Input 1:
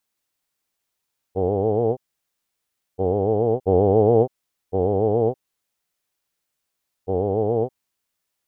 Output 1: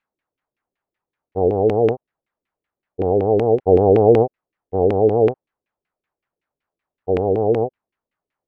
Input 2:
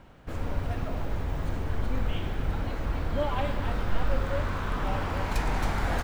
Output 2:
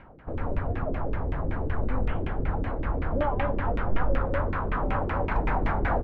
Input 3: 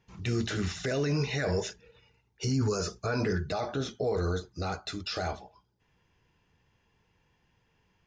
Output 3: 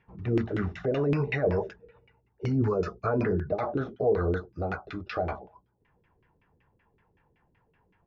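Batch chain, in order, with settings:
auto-filter low-pass saw down 5.3 Hz 310–2,500 Hz
level +1 dB

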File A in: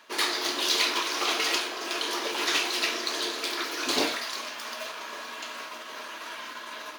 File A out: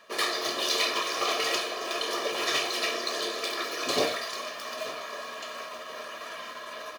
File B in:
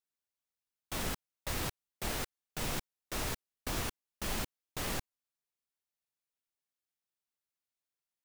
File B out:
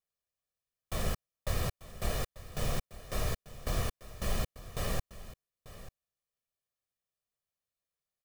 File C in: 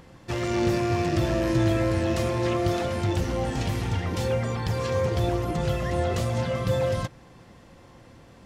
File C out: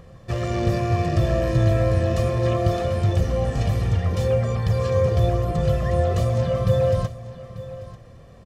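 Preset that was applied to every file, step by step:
tilt shelving filter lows +4 dB, about 750 Hz
comb filter 1.7 ms, depth 63%
single-tap delay 891 ms −16 dB

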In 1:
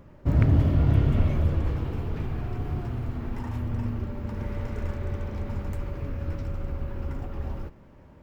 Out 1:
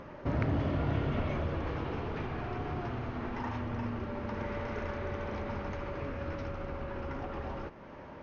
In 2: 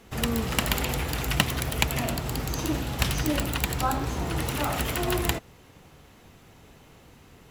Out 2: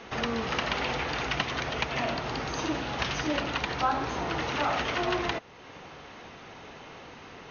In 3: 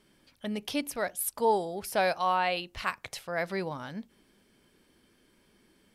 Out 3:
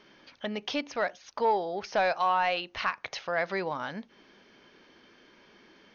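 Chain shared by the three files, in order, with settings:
downward compressor 1.5 to 1, threshold −47 dBFS
mid-hump overdrive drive 19 dB, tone 2,300 Hz, clips at −10 dBFS
linear-phase brick-wall low-pass 6,700 Hz

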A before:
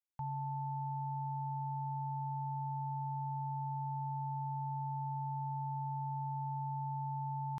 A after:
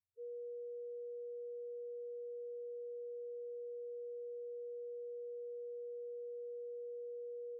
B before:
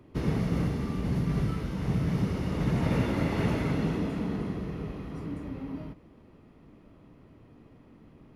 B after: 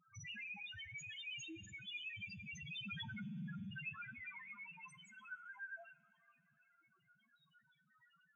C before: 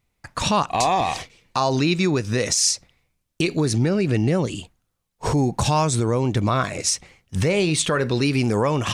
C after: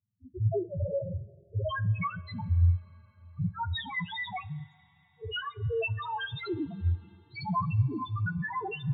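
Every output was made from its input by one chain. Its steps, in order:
frequency axis turned over on the octave scale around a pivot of 650 Hz
spectral peaks only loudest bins 1
coupled-rooms reverb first 0.28 s, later 4.4 s, from −18 dB, DRR 15.5 dB

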